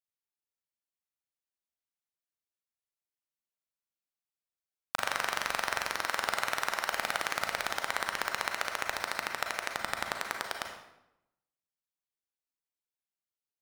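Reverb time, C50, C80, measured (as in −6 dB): 0.85 s, 4.5 dB, 7.0 dB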